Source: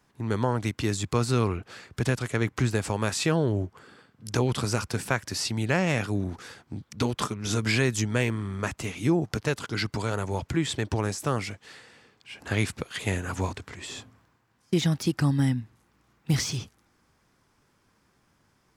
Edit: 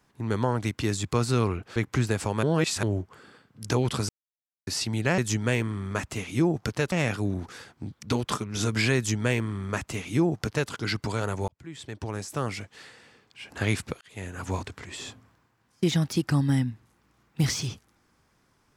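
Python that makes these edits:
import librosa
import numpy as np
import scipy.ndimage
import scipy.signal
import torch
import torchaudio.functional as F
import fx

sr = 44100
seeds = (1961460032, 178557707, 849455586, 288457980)

y = fx.edit(x, sr, fx.cut(start_s=1.76, length_s=0.64),
    fx.reverse_span(start_s=3.07, length_s=0.4),
    fx.silence(start_s=4.73, length_s=0.58),
    fx.duplicate(start_s=7.86, length_s=1.74, to_s=5.82),
    fx.fade_in_span(start_s=10.38, length_s=1.25),
    fx.fade_in_span(start_s=12.91, length_s=0.61), tone=tone)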